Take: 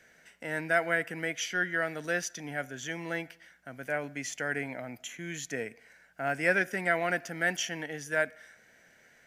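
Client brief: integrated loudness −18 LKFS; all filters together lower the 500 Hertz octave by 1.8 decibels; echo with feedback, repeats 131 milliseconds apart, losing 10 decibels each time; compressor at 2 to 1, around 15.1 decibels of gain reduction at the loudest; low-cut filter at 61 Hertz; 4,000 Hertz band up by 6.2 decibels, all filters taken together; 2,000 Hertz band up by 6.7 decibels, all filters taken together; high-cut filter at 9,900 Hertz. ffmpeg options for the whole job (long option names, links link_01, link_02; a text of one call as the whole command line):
ffmpeg -i in.wav -af "highpass=61,lowpass=9900,equalizer=frequency=500:width_type=o:gain=-3,equalizer=frequency=2000:width_type=o:gain=7.5,equalizer=frequency=4000:width_type=o:gain=5.5,acompressor=threshold=-46dB:ratio=2,aecho=1:1:131|262|393|524:0.316|0.101|0.0324|0.0104,volume=21dB" out.wav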